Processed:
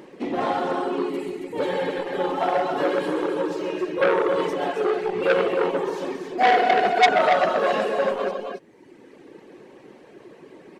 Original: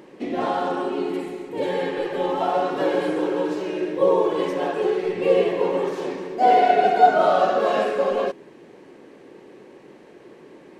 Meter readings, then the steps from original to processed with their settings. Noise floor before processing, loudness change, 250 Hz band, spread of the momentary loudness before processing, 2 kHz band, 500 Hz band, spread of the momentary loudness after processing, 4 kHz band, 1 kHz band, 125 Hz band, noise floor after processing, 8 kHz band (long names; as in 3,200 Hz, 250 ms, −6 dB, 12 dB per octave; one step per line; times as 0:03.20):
−47 dBFS, −1.0 dB, −1.5 dB, 11 LU, +4.5 dB, −1.5 dB, 11 LU, +3.0 dB, −1.5 dB, −1.5 dB, −49 dBFS, can't be measured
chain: reverb reduction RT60 1.5 s
loudspeakers that aren't time-aligned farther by 45 metres −10 dB, 94 metres −6 dB
saturating transformer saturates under 2,200 Hz
level +2 dB